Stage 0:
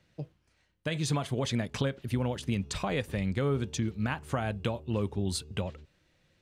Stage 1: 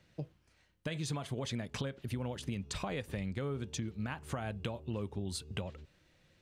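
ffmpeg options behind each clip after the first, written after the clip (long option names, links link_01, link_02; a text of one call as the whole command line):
ffmpeg -i in.wav -af "acompressor=threshold=-38dB:ratio=3,volume=1dB" out.wav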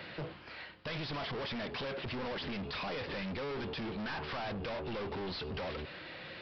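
ffmpeg -i in.wav -filter_complex "[0:a]asplit=2[link_01][link_02];[link_02]highpass=frequency=720:poles=1,volume=35dB,asoftclip=type=tanh:threshold=-23dB[link_03];[link_01][link_03]amix=inputs=2:normalize=0,lowpass=frequency=2300:poles=1,volume=-6dB,aresample=11025,asoftclip=type=tanh:threshold=-37dB,aresample=44100" out.wav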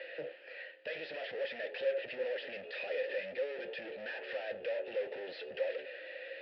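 ffmpeg -i in.wav -filter_complex "[0:a]acrossover=split=330[link_01][link_02];[link_01]acrusher=bits=5:mix=0:aa=0.5[link_03];[link_03][link_02]amix=inputs=2:normalize=0,asplit=3[link_04][link_05][link_06];[link_04]bandpass=frequency=530:width_type=q:width=8,volume=0dB[link_07];[link_05]bandpass=frequency=1840:width_type=q:width=8,volume=-6dB[link_08];[link_06]bandpass=frequency=2480:width_type=q:width=8,volume=-9dB[link_09];[link_07][link_08][link_09]amix=inputs=3:normalize=0,flanger=delay=5.6:depth=7.2:regen=73:speed=0.54:shape=sinusoidal,volume=15dB" out.wav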